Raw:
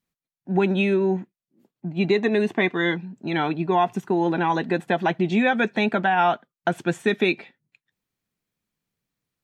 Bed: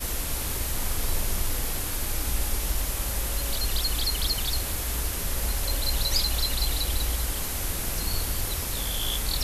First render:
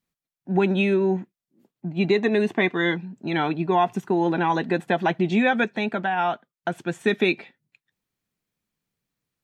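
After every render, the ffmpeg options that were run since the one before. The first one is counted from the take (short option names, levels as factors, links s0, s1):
-filter_complex "[0:a]asplit=3[s0][s1][s2];[s0]atrim=end=5.642[s3];[s1]atrim=start=5.638:end=7.012,asetpts=PTS-STARTPTS,volume=0.631[s4];[s2]atrim=start=7.008[s5];[s3][s4]acrossfade=d=0.004:c1=hsin:c2=hsin[s6];[s6][s5]acrossfade=d=0.004:c1=hsin:c2=hsin"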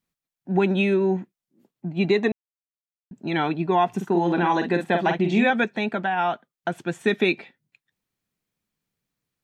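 -filter_complex "[0:a]asettb=1/sr,asplit=3[s0][s1][s2];[s0]atrim=end=3.894[s3];[s1]atrim=start=3.89:end=5.5,asetpts=PTS-STARTPTS,afade=t=in:d=0.004:c=qsin,afade=t=out:st=1.606:d=0.004:c=qsin,asplit=2[s4][s5];[s5]adelay=46,volume=0.501[s6];[s4][s6]amix=inputs=2:normalize=0,atrim=end_sample=71001[s7];[s2]atrim=start=5.496[s8];[s3][s7]acrossfade=d=0.004:c1=hsin:c2=qsin[s9];[s9][s8]acrossfade=d=0.004:c1=qsin:c2=hsin,asplit=3[s10][s11][s12];[s10]atrim=end=2.32,asetpts=PTS-STARTPTS,afade=t=out:st=2.316:d=0.004:c=hsin[s13];[s11]atrim=start=2.32:end=3.11,asetpts=PTS-STARTPTS,volume=0[s14];[s12]atrim=start=3.11,asetpts=PTS-STARTPTS,afade=t=in:d=0.004:c=hsin[s15];[s13][s14][s15]concat=n=3:v=0:a=1"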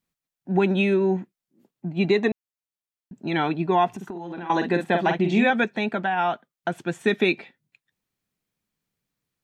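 -filter_complex "[0:a]asettb=1/sr,asplit=3[s0][s1][s2];[s0]atrim=end=3.914[s3];[s1]atrim=start=3.91:end=4.5,asetpts=PTS-STARTPTS,afade=t=in:d=0.004:c=qsin,afade=t=out:st=0.586:d=0.004:c=qsin,acompressor=threshold=0.0316:ratio=16:attack=3.2:release=140:knee=1:detection=peak[s4];[s2]atrim=start=4.496[s5];[s3][s4]acrossfade=d=0.004:c1=hsin:c2=qsin[s6];[s6][s5]acrossfade=d=0.004:c1=qsin:c2=hsin"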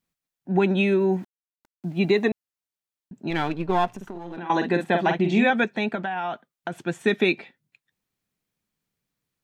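-filter_complex "[0:a]asettb=1/sr,asplit=3[s0][s1][s2];[s0]atrim=end=0.884[s3];[s1]atrim=start=0.88:end=2.29,asetpts=PTS-STARTPTS,afade=t=in:d=0.004:c=qsin,afade=t=out:st=1.406:d=0.004:c=qsin,aeval=exprs='val(0)*gte(abs(val(0)),0.00355)':c=same[s4];[s2]atrim=start=2.286[s5];[s3][s4]acrossfade=d=0.004:c1=hsin:c2=qsin[s6];[s6][s5]acrossfade=d=0.004:c1=qsin:c2=hsin,asettb=1/sr,asplit=3[s7][s8][s9];[s7]atrim=end=3.304[s10];[s8]atrim=start=3.3:end=4.37,asetpts=PTS-STARTPTS,afade=t=in:d=0.004:c=qsin,afade=t=out:st=1.066:d=0.004:c=qsin,aeval=exprs='if(lt(val(0),0),0.447*val(0),val(0))':c=same[s11];[s9]atrim=start=4.366[s12];[s10][s11]acrossfade=d=0.004:c1=hsin:c2=qsin[s13];[s13][s12]acrossfade=d=0.004:c1=qsin:c2=hsin,asettb=1/sr,asplit=3[s14][s15][s16];[s14]atrim=end=5.954[s17];[s15]atrim=start=5.95:end=6.77,asetpts=PTS-STARTPTS,afade=t=in:d=0.004:c=qsin,afade=t=out:st=0.816:d=0.004:c=qsin,acompressor=threshold=0.0631:ratio=6:attack=3.2:release=140:knee=1:detection=peak[s18];[s16]atrim=start=6.766[s19];[s17][s18]acrossfade=d=0.004:c1=hsin:c2=qsin[s20];[s20][s19]acrossfade=d=0.004:c1=qsin:c2=hsin"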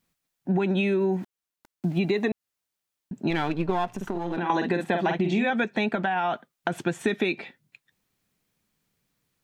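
-filter_complex "[0:a]asplit=2[s0][s1];[s1]alimiter=limit=0.168:level=0:latency=1:release=37,volume=1.19[s2];[s0][s2]amix=inputs=2:normalize=0,acompressor=threshold=0.0794:ratio=5"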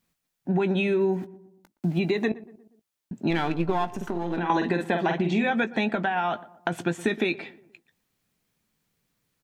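-filter_complex "[0:a]asplit=2[s0][s1];[s1]adelay=18,volume=0.237[s2];[s0][s2]amix=inputs=2:normalize=0,asplit=2[s3][s4];[s4]adelay=119,lowpass=f=1200:p=1,volume=0.133,asplit=2[s5][s6];[s6]adelay=119,lowpass=f=1200:p=1,volume=0.5,asplit=2[s7][s8];[s8]adelay=119,lowpass=f=1200:p=1,volume=0.5,asplit=2[s9][s10];[s10]adelay=119,lowpass=f=1200:p=1,volume=0.5[s11];[s3][s5][s7][s9][s11]amix=inputs=5:normalize=0"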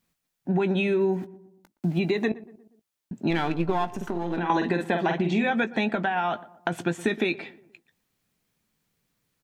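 -af anull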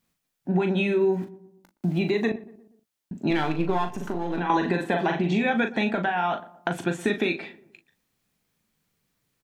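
-filter_complex "[0:a]asplit=2[s0][s1];[s1]adelay=39,volume=0.422[s2];[s0][s2]amix=inputs=2:normalize=0"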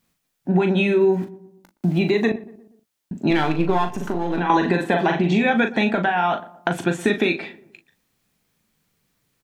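-af "volume=1.78"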